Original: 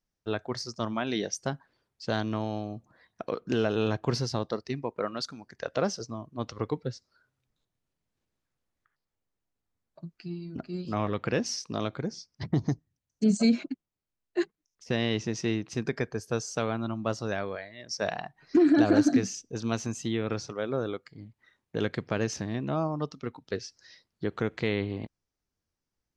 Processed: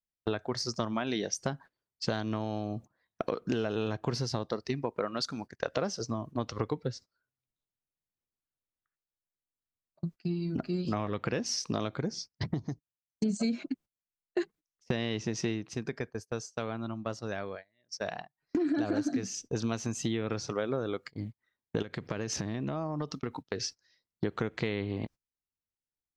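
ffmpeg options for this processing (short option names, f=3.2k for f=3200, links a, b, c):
-filter_complex "[0:a]asettb=1/sr,asplit=3[a][b][c];[a]atrim=end=21.824[d];[b]atrim=start=21.82:end=23.6,asetpts=PTS-STARTPTS,afade=t=in:d=0.004:c=qsin,afade=t=out:st=1.776:d=0.004:c=qsin,acompressor=threshold=-37dB:ratio=5:attack=3.2:release=140:knee=1:detection=peak[e];[c]atrim=start=23.596[f];[d][e]acrossfade=d=0.004:c1=hsin:c2=qsin[g];[g][f]acrossfade=d=0.004:c1=qsin:c2=hsin,asplit=5[h][i][j][k][l];[h]atrim=end=12.76,asetpts=PTS-STARTPTS,afade=t=out:st=12.31:d=0.45:c=qua:silence=0.16788[m];[i]atrim=start=12.76:end=12.85,asetpts=PTS-STARTPTS,volume=-15.5dB[n];[j]atrim=start=12.85:end=15.91,asetpts=PTS-STARTPTS,afade=t=in:d=0.45:c=qua:silence=0.16788,afade=t=out:st=2.66:d=0.4:c=qua:silence=0.237137[o];[k]atrim=start=15.91:end=18.31,asetpts=PTS-STARTPTS,volume=-12.5dB[p];[l]atrim=start=18.31,asetpts=PTS-STARTPTS,afade=t=in:d=0.4:c=qua:silence=0.237137[q];[m][n][o][p][q]concat=n=5:v=0:a=1,agate=range=-24dB:threshold=-47dB:ratio=16:detection=peak,acompressor=threshold=-37dB:ratio=6,volume=8.5dB"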